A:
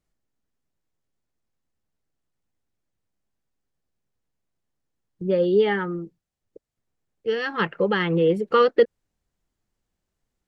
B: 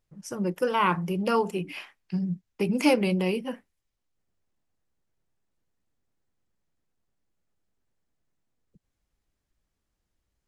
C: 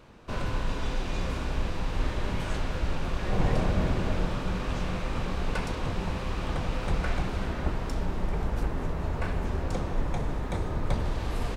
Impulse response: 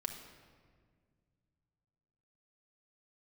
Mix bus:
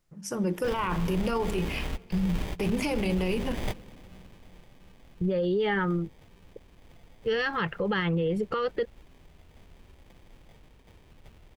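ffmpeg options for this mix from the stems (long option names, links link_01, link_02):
-filter_complex "[0:a]asubboost=boost=8:cutoff=93,volume=3dB[link_01];[1:a]bandreject=frequency=50:width_type=h:width=6,bandreject=frequency=100:width_type=h:width=6,bandreject=frequency=150:width_type=h:width=6,bandreject=frequency=200:width_type=h:width=6,bandreject=frequency=250:width_type=h:width=6,bandreject=frequency=300:width_type=h:width=6,bandreject=frequency=350:width_type=h:width=6,bandreject=frequency=400:width_type=h:width=6,volume=1.5dB,asplit=3[link_02][link_03][link_04];[link_03]volume=-12.5dB[link_05];[2:a]acrusher=samples=32:mix=1:aa=0.000001,equalizer=frequency=2800:width=1.5:gain=7,adelay=350,volume=-3.5dB[link_06];[link_04]apad=whole_len=525296[link_07];[link_06][link_07]sidechaingate=range=-22dB:threshold=-52dB:ratio=16:detection=peak[link_08];[link_01][link_02]amix=inputs=2:normalize=0,acompressor=threshold=-20dB:ratio=6,volume=0dB[link_09];[3:a]atrim=start_sample=2205[link_10];[link_05][link_10]afir=irnorm=-1:irlink=0[link_11];[link_08][link_09][link_11]amix=inputs=3:normalize=0,alimiter=limit=-20dB:level=0:latency=1:release=25"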